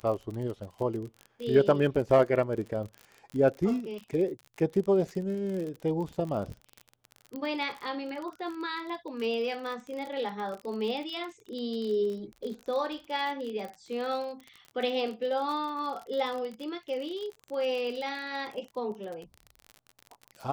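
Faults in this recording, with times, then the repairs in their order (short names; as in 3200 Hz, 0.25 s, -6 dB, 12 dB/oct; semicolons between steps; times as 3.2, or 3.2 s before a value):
crackle 41/s -35 dBFS
7.36 pop -25 dBFS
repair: de-click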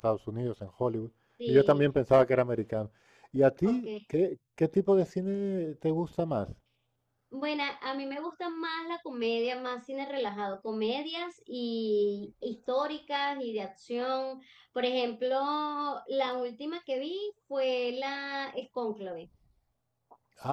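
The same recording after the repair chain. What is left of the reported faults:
7.36 pop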